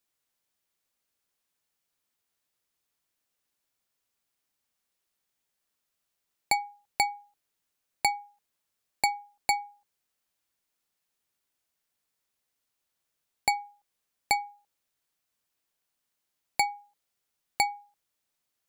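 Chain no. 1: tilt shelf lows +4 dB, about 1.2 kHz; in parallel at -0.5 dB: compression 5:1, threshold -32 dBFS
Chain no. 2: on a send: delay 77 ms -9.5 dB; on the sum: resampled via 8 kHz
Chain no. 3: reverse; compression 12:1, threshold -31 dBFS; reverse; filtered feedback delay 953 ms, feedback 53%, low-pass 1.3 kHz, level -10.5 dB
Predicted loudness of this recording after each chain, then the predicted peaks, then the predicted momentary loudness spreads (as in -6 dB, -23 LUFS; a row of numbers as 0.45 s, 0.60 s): -28.0 LUFS, -31.0 LUFS, -39.5 LUFS; -7.5 dBFS, -13.5 dBFS, -20.0 dBFS; 15 LU, 11 LU, 20 LU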